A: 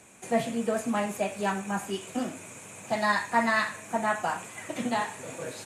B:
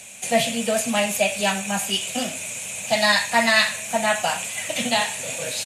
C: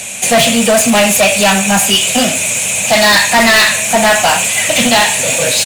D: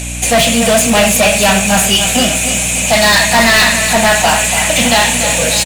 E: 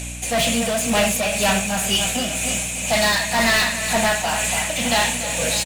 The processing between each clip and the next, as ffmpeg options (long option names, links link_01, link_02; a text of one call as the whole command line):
ffmpeg -i in.wav -af "firequalizer=gain_entry='entry(220,0);entry(330,-10);entry(580,5);entry(1100,-4);entry(2700,14);entry(7800,11);entry(12000,13)':delay=0.05:min_phase=1,volume=4dB" out.wav
ffmpeg -i in.wav -filter_complex "[0:a]asplit=2[link_01][link_02];[link_02]acontrast=63,volume=3dB[link_03];[link_01][link_03]amix=inputs=2:normalize=0,asoftclip=type=tanh:threshold=-11dB,volume=5.5dB" out.wav
ffmpeg -i in.wav -af "aeval=exprs='val(0)+0.0891*(sin(2*PI*60*n/s)+sin(2*PI*2*60*n/s)/2+sin(2*PI*3*60*n/s)/3+sin(2*PI*4*60*n/s)/4+sin(2*PI*5*60*n/s)/5)':channel_layout=same,aecho=1:1:289|578|867|1156|1445|1734:0.376|0.192|0.0978|0.0499|0.0254|0.013,volume=-1dB" out.wav
ffmpeg -i in.wav -af "tremolo=f=2:d=0.39,volume=-8dB" out.wav